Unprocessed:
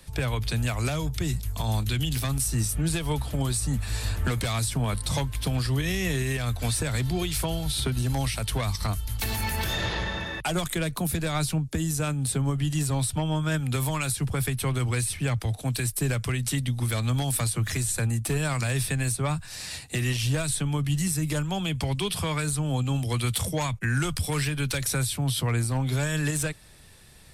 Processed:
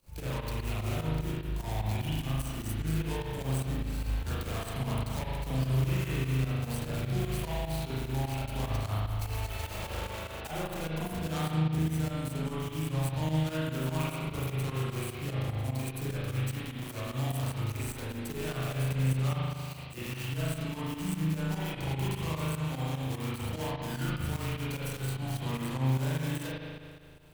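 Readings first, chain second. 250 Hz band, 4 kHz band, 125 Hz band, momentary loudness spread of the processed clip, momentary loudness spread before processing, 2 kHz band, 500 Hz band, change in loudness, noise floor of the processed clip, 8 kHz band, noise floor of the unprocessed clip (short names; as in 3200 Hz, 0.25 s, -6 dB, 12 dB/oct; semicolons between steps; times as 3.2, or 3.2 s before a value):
-4.5 dB, -9.5 dB, -5.0 dB, 7 LU, 3 LU, -8.5 dB, -4.5 dB, -6.0 dB, -42 dBFS, -15.0 dB, -41 dBFS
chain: median filter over 25 samples; pre-emphasis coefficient 0.9; in parallel at +1 dB: limiter -36 dBFS, peak gain reduction 10 dB; on the sum: spring tank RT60 1.9 s, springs 38 ms, chirp 80 ms, DRR -9 dB; pump 149 bpm, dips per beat 2, -11 dB, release 99 ms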